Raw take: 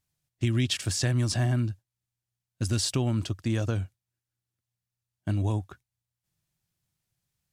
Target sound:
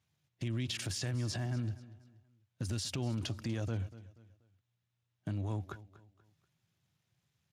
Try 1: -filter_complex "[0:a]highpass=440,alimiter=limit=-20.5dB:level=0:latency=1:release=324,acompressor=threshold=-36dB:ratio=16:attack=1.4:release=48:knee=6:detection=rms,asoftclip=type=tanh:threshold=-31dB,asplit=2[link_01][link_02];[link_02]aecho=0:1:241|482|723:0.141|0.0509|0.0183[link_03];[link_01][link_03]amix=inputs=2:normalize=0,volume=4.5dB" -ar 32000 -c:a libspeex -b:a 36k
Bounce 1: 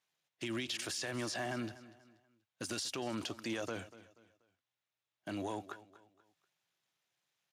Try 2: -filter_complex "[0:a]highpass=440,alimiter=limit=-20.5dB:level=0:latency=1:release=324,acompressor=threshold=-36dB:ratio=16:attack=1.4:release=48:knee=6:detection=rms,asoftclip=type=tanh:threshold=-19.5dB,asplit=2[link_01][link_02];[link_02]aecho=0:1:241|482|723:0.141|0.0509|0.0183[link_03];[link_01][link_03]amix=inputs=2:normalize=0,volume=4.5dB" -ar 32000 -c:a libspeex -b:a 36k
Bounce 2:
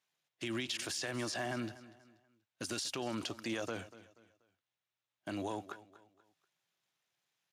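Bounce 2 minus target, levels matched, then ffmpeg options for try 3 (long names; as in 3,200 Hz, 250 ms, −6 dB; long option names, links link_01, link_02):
500 Hz band +6.0 dB
-filter_complex "[0:a]alimiter=limit=-20.5dB:level=0:latency=1:release=324,acompressor=threshold=-36dB:ratio=16:attack=1.4:release=48:knee=6:detection=rms,asoftclip=type=tanh:threshold=-19.5dB,asplit=2[link_01][link_02];[link_02]aecho=0:1:241|482|723:0.141|0.0509|0.0183[link_03];[link_01][link_03]amix=inputs=2:normalize=0,volume=4.5dB" -ar 32000 -c:a libspeex -b:a 36k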